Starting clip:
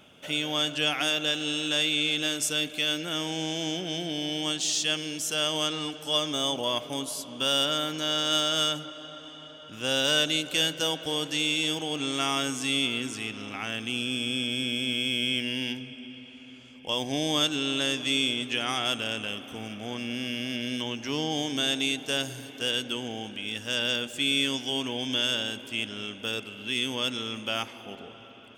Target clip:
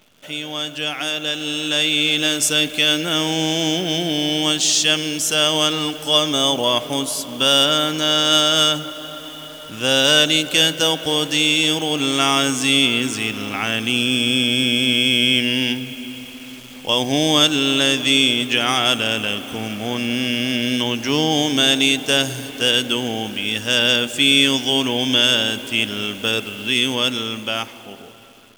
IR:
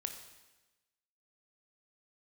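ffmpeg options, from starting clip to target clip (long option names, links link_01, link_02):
-af "acrusher=bits=9:dc=4:mix=0:aa=0.000001,dynaudnorm=framelen=320:gausssize=11:maxgain=11.5dB,volume=1dB"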